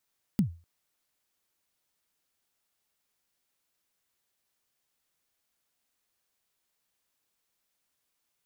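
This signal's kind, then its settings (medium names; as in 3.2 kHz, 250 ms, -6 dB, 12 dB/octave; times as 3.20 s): kick drum length 0.25 s, from 230 Hz, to 84 Hz, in 103 ms, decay 0.33 s, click on, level -17 dB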